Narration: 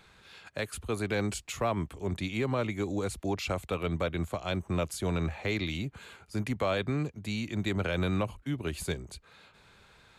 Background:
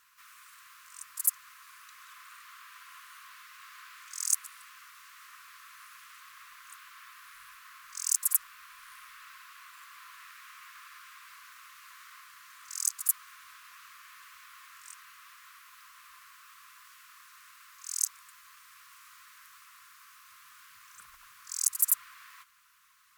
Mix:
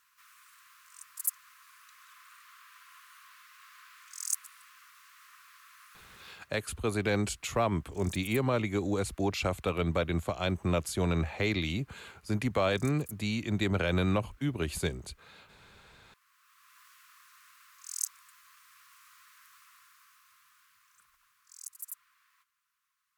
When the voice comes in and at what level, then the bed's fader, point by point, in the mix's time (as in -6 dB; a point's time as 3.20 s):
5.95 s, +1.5 dB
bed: 6.30 s -4.5 dB
6.54 s -19.5 dB
16.05 s -19.5 dB
16.80 s -4 dB
19.69 s -4 dB
21.71 s -17.5 dB